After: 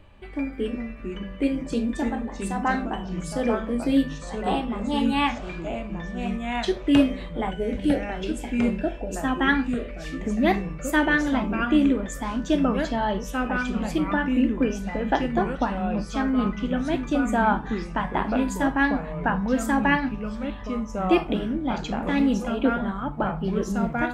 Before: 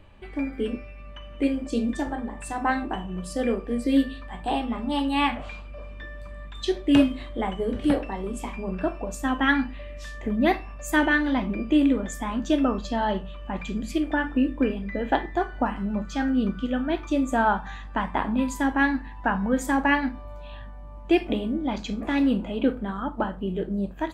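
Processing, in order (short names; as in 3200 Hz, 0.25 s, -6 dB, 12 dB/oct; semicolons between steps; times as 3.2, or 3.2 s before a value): 7.51–9.22 Butterworth band-stop 1100 Hz, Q 1.8; echoes that change speed 0.338 s, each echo -3 st, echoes 2, each echo -6 dB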